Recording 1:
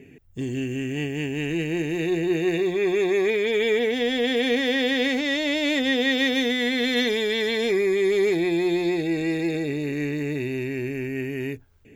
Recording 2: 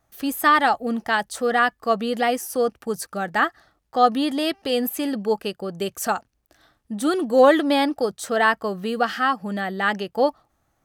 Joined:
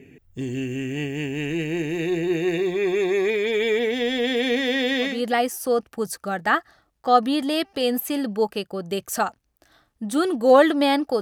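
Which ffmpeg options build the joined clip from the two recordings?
-filter_complex "[0:a]apad=whole_dur=11.21,atrim=end=11.21,atrim=end=5.23,asetpts=PTS-STARTPTS[a];[1:a]atrim=start=1.9:end=8.1,asetpts=PTS-STARTPTS[b];[a][b]acrossfade=d=0.22:c1=tri:c2=tri"

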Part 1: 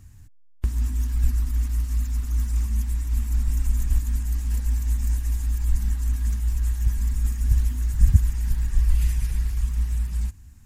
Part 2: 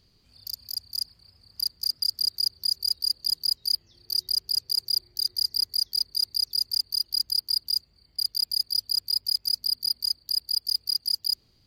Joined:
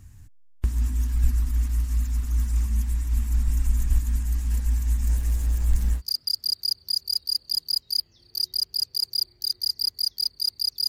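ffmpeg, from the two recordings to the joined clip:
-filter_complex "[0:a]asettb=1/sr,asplit=3[a][b][c];[a]atrim=end=5.074[d];[b]atrim=start=5.07:end=6.02,asetpts=PTS-STARTPTS,afade=t=in:d=0.004:c=qsin,afade=t=out:st=0.946:d=0.004:c=qsin,aeval=exprs='val(0)+0.5*0.0158*sgn(val(0))':c=same[e];[c]atrim=start=6.016[f];[d][e]acrossfade=d=0.004:c1=hsin:c2=qsin[g];[g][f]acrossfade=d=0.004:c1=qsin:c2=hsin,apad=whole_dur=10.88,atrim=end=10.88,atrim=end=6.02,asetpts=PTS-STARTPTS[h];[1:a]atrim=start=1.71:end=6.63,asetpts=PTS-STARTPTS[i];[h][i]acrossfade=d=0.06:c1=tri:c2=tri"

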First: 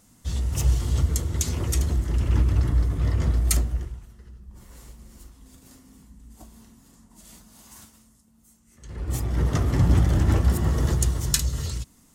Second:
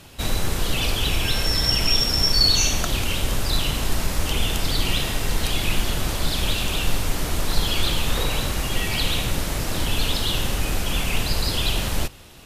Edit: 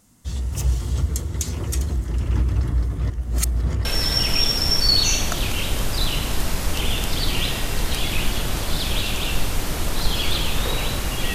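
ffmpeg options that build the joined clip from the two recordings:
-filter_complex "[0:a]apad=whole_dur=11.34,atrim=end=11.34,asplit=2[a][b];[a]atrim=end=3.102[c];[b]atrim=start=3.098:end=3.852,asetpts=PTS-STARTPTS,areverse[d];[1:a]atrim=start=1.368:end=8.86[e];[c][d]acrossfade=d=0.004:c1=hsin:c2=hsin[f];[f][e]acrossfade=d=0.004:c1=hsin:c2=hsin"

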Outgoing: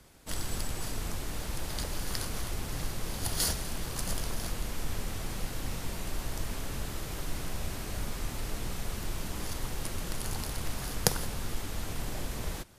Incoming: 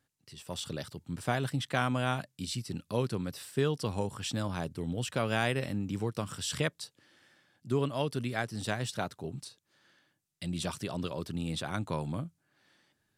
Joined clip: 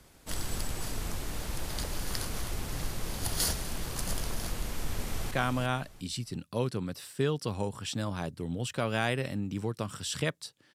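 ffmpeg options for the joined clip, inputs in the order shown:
-filter_complex "[0:a]apad=whole_dur=10.74,atrim=end=10.74,atrim=end=5.312[a];[1:a]atrim=start=1.688:end=7.12[b];[a][b]acrossfade=d=0.004:c1=hsin:c2=hsin,asplit=2[c][d];[d]afade=t=in:st=4.64:d=0.01,afade=t=out:st=5.31:d=0.01,aecho=0:1:350|700|1050:0.501187|0.125297|0.0313242[e];[c][e]amix=inputs=2:normalize=0"

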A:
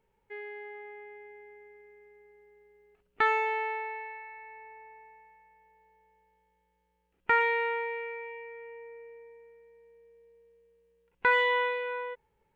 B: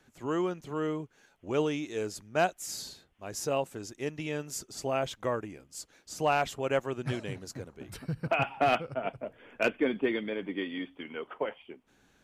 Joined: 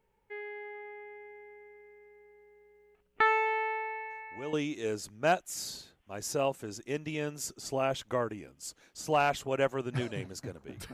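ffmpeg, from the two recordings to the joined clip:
-filter_complex "[1:a]asplit=2[a][b];[0:a]apad=whole_dur=10.93,atrim=end=10.93,atrim=end=4.532[c];[b]atrim=start=1.648:end=8.05[d];[a]atrim=start=1.22:end=1.65,asetpts=PTS-STARTPTS,volume=-11dB,afade=t=in:d=0.004:c=hsin,afade=t=out:st=0.426:d=0.004:c=hsin,adelay=4100[e];[c][d]acrossfade=d=0.004:c1=hsin:c2=hsin[f];[f][e]amix=inputs=2:normalize=0"

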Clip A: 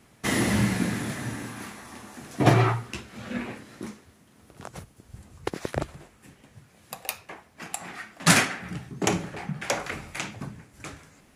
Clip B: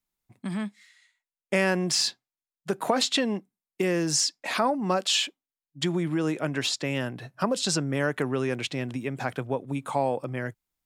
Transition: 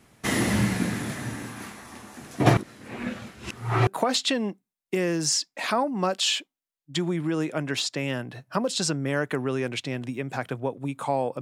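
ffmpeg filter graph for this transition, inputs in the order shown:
-filter_complex "[0:a]apad=whole_dur=11.41,atrim=end=11.41,asplit=2[a][b];[a]atrim=end=2.572[c];[b]atrim=start=2.568:end=3.872,asetpts=PTS-STARTPTS,areverse[d];[1:a]atrim=start=2.738:end=10.28[e];[c][d]acrossfade=d=0.004:c1=hsin:c2=hsin[f];[f][e]acrossfade=d=0.004:c1=hsin:c2=hsin"

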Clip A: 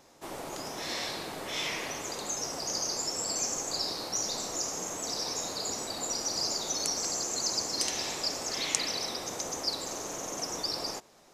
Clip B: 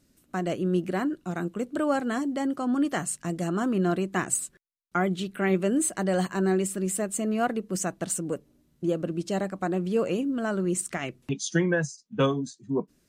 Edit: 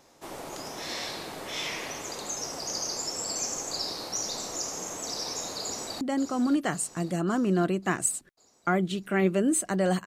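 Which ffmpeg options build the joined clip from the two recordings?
-filter_complex "[0:a]apad=whole_dur=10.06,atrim=end=10.06,atrim=end=6.012[a];[1:a]atrim=start=2.288:end=6.34[b];[a][b]acrossfade=d=0.004:c1=hsin:c2=hsin,asplit=2[c][d];[d]afade=t=in:st=5.62:d=0.01,afade=t=out:st=6.01:d=0.01,aecho=0:1:550|1100|1650|2200|2750|3300|3850:0.298538|0.179123|0.107474|0.0644843|0.0386906|0.0232143|0.0139286[e];[c][e]amix=inputs=2:normalize=0"

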